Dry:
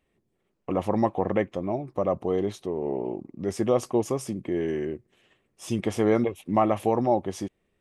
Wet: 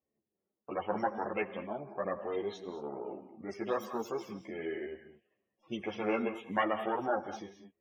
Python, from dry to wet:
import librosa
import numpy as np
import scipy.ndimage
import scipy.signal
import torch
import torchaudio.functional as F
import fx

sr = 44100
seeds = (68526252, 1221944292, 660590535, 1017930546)

y = fx.tracing_dist(x, sr, depth_ms=0.21)
y = fx.highpass(y, sr, hz=48.0, slope=6)
y = fx.spec_topn(y, sr, count=64)
y = fx.env_lowpass(y, sr, base_hz=740.0, full_db=-21.0)
y = fx.tilt_eq(y, sr, slope=3.5)
y = fx.rev_gated(y, sr, seeds[0], gate_ms=240, shape='rising', drr_db=10.5)
y = fx.ensemble(y, sr)
y = F.gain(torch.from_numpy(y), -3.0).numpy()